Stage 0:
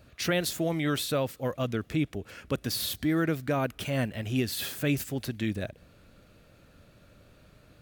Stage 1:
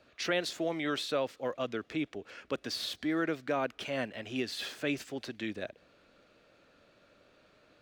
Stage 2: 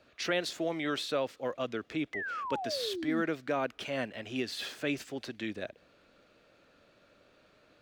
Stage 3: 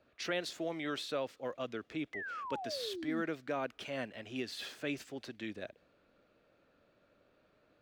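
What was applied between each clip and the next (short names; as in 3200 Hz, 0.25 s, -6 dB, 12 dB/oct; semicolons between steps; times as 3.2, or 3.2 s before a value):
three-band isolator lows -17 dB, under 260 Hz, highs -19 dB, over 6600 Hz; gain -2 dB
painted sound fall, 2.13–3.22, 210–2100 Hz -37 dBFS
mismatched tape noise reduction decoder only; gain -5 dB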